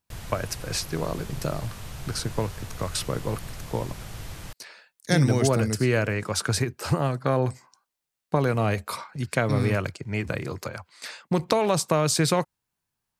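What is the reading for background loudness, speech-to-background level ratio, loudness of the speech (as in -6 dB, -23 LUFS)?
-40.0 LUFS, 13.5 dB, -26.5 LUFS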